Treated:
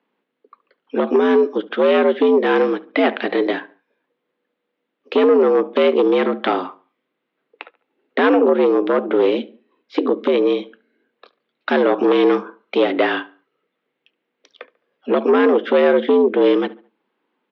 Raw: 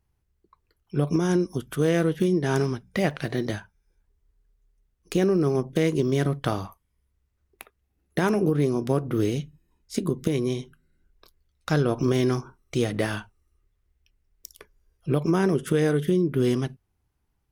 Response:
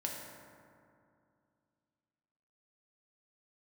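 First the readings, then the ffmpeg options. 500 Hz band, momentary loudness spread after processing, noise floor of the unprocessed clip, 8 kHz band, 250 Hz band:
+11.0 dB, 10 LU, −74 dBFS, below −20 dB, +5.5 dB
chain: -filter_complex "[0:a]asplit=2[link_01][link_02];[link_02]adelay=71,lowpass=frequency=2600:poles=1,volume=-20dB,asplit=2[link_03][link_04];[link_04]adelay=71,lowpass=frequency=2600:poles=1,volume=0.39,asplit=2[link_05][link_06];[link_06]adelay=71,lowpass=frequency=2600:poles=1,volume=0.39[link_07];[link_01][link_03][link_05][link_07]amix=inputs=4:normalize=0,aeval=exprs='0.355*sin(PI/2*2*val(0)/0.355)':channel_layout=same,highpass=frequency=190:width_type=q:width=0.5412,highpass=frequency=190:width_type=q:width=1.307,lowpass=frequency=3600:width_type=q:width=0.5176,lowpass=frequency=3600:width_type=q:width=0.7071,lowpass=frequency=3600:width_type=q:width=1.932,afreqshift=76,volume=1.5dB"

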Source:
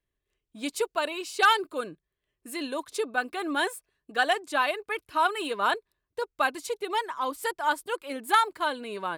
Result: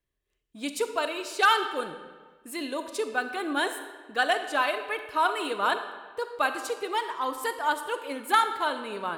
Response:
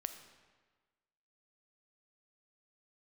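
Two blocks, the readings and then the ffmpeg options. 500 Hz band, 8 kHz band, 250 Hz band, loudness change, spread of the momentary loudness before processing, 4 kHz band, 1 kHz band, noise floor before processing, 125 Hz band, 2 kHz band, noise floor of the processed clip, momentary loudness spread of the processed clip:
+0.5 dB, 0.0 dB, 0.0 dB, 0.0 dB, 12 LU, 0.0 dB, 0.0 dB, −85 dBFS, can't be measured, 0.0 dB, −80 dBFS, 12 LU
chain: -filter_complex "[1:a]atrim=start_sample=2205[link_01];[0:a][link_01]afir=irnorm=-1:irlink=0,volume=2dB"

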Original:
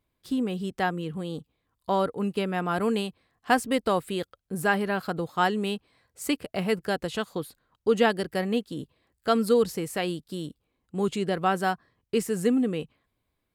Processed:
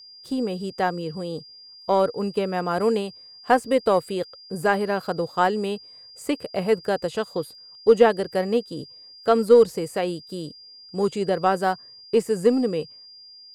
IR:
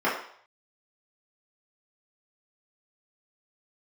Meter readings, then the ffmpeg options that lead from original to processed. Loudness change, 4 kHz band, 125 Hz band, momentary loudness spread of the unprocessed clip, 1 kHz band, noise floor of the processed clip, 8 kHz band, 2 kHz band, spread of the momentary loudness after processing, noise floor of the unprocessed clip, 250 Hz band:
+4.5 dB, +1.0 dB, +0.5 dB, 13 LU, +3.5 dB, −47 dBFS, −1.5 dB, 0.0 dB, 17 LU, −79 dBFS, +1.0 dB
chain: -filter_complex "[0:a]asplit=2[link_01][link_02];[link_02]asoftclip=type=tanh:threshold=-17dB,volume=-11dB[link_03];[link_01][link_03]amix=inputs=2:normalize=0,aeval=exprs='val(0)+0.00891*sin(2*PI*4800*n/s)':channel_layout=same,aeval=exprs='0.473*(cos(1*acos(clip(val(0)/0.473,-1,1)))-cos(1*PI/2))+0.0376*(cos(2*acos(clip(val(0)/0.473,-1,1)))-cos(2*PI/2))+0.0168*(cos(7*acos(clip(val(0)/0.473,-1,1)))-cos(7*PI/2))':channel_layout=same,equalizer=frequency=125:width_type=o:width=1:gain=4,equalizer=frequency=500:width_type=o:width=1:gain=9,equalizer=frequency=1000:width_type=o:width=1:gain=3,equalizer=frequency=8000:width_type=o:width=1:gain=6,acrossover=split=2900[link_04][link_05];[link_05]acompressor=threshold=-34dB:ratio=4:attack=1:release=60[link_06];[link_04][link_06]amix=inputs=2:normalize=0,volume=-2.5dB"

